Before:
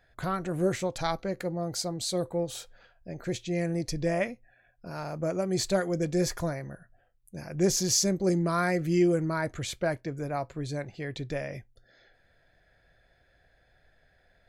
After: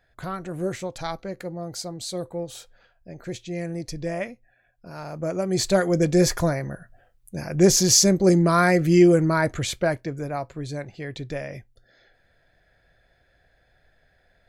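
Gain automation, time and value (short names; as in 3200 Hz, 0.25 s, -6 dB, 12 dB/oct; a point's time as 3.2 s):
4.88 s -1 dB
5.98 s +8.5 dB
9.46 s +8.5 dB
10.45 s +2 dB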